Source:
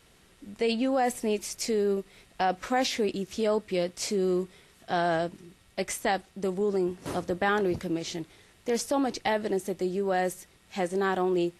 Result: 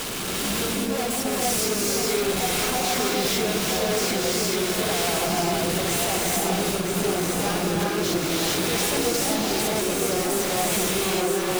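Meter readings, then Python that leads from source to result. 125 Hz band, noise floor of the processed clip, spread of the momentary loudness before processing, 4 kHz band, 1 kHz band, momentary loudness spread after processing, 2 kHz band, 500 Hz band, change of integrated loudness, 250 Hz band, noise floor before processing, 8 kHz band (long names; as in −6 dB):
+8.0 dB, −27 dBFS, 9 LU, +12.5 dB, +3.5 dB, 2 LU, +6.5 dB, +3.0 dB, +6.0 dB, +4.0 dB, −60 dBFS, +15.0 dB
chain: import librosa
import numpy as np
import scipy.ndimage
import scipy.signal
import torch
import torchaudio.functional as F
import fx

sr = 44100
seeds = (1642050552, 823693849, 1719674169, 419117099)

p1 = np.sign(x) * np.sqrt(np.mean(np.square(x)))
p2 = scipy.signal.sosfilt(scipy.signal.butter(4, 110.0, 'highpass', fs=sr, output='sos'), p1)
p3 = fx.peak_eq(p2, sr, hz=1900.0, db=-12.0, octaves=0.22)
p4 = fx.leveller(p3, sr, passes=3)
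p5 = 10.0 ** (-26.5 / 20.0) * np.tanh(p4 / 10.0 ** (-26.5 / 20.0))
p6 = p5 + fx.echo_single(p5, sr, ms=974, db=-5.5, dry=0)
p7 = fx.rev_gated(p6, sr, seeds[0], gate_ms=470, shape='rising', drr_db=-4.0)
y = F.gain(torch.from_numpy(p7), -2.0).numpy()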